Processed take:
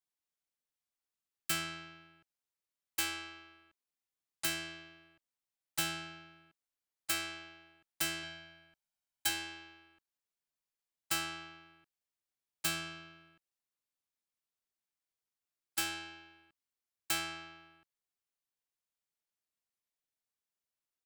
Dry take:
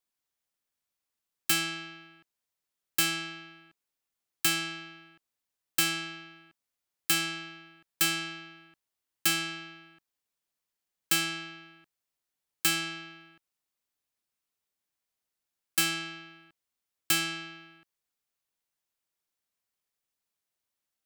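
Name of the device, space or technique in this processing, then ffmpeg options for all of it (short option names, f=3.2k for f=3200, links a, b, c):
octave pedal: -filter_complex "[0:a]asplit=2[a][b];[b]asetrate=22050,aresample=44100,atempo=2,volume=-6dB[c];[a][c]amix=inputs=2:normalize=0,asettb=1/sr,asplit=3[d][e][f];[d]atrim=end=8.234[g];[e]atrim=start=8.23:end=9.29,asetpts=PTS-STARTPTS,afade=t=in:d=0.004:c=qsin,afade=t=out:st=1.056:d=0.004:c=qsin,aecho=1:1:1.3:0.55,atrim=end_sample=46746[h];[f]atrim=start=9.286[i];[g][h]acrossfade=d=0.004:c1=hsin:c2=qsin[j];[j][i]acrossfade=d=0.004:c1=qsin:c2=hsin,volume=-9dB"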